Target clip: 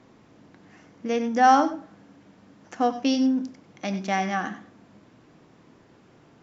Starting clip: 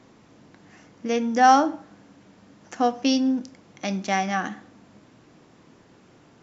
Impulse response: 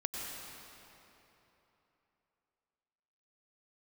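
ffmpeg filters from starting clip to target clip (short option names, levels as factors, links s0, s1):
-filter_complex "[0:a]highshelf=f=5000:g=-7[s0];[1:a]atrim=start_sample=2205,atrim=end_sample=4410[s1];[s0][s1]afir=irnorm=-1:irlink=0"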